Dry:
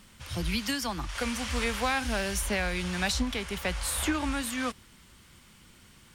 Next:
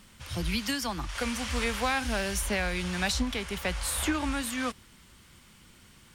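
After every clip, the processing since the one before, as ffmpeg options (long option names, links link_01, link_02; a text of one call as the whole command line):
ffmpeg -i in.wav -af anull out.wav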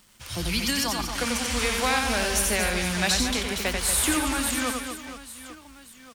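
ffmpeg -i in.wav -af "bass=frequency=250:gain=-3,treble=frequency=4000:gain=5,aeval=exprs='sgn(val(0))*max(abs(val(0))-0.00168,0)':channel_layout=same,aecho=1:1:90|234|464.4|833|1423:0.631|0.398|0.251|0.158|0.1,volume=3dB" out.wav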